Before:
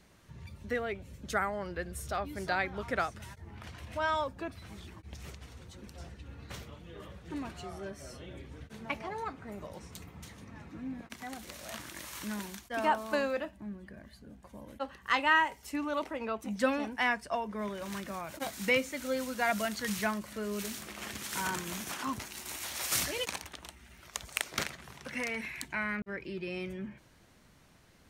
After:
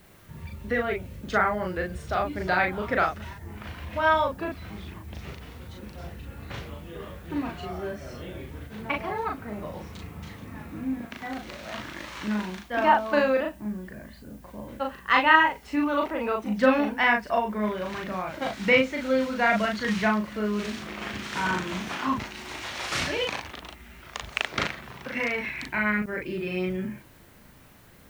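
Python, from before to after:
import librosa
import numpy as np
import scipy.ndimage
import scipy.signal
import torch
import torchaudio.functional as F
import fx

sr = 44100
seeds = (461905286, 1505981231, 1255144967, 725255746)

y = scipy.signal.sosfilt(scipy.signal.butter(2, 3500.0, 'lowpass', fs=sr, output='sos'), x)
y = fx.dmg_noise_colour(y, sr, seeds[0], colour='blue', level_db=-69.0)
y = fx.doubler(y, sr, ms=38.0, db=-2.5)
y = y * 10.0 ** (6.5 / 20.0)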